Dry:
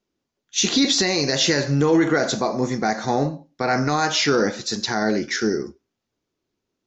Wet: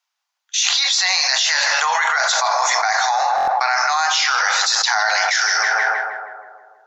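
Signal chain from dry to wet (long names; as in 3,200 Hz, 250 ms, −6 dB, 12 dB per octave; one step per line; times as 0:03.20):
Butterworth high-pass 770 Hz 48 dB per octave
downward expander −37 dBFS
on a send: tape delay 159 ms, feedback 66%, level −9.5 dB, low-pass 1,400 Hz
on the sum: buffer that repeats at 0:03.36, samples 1,024, times 4
envelope flattener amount 100%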